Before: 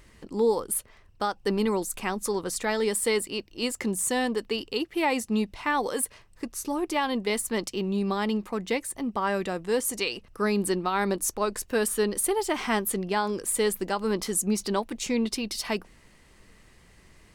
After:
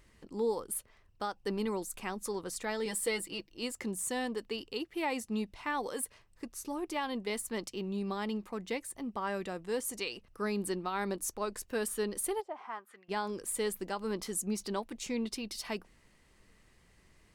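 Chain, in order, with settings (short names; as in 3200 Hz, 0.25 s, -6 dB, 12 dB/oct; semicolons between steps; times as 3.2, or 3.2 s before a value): 2.85–3.51 comb 6.1 ms, depth 72%; 12.4–13.08 band-pass 560 Hz -> 2100 Hz, Q 2.7; gain -8.5 dB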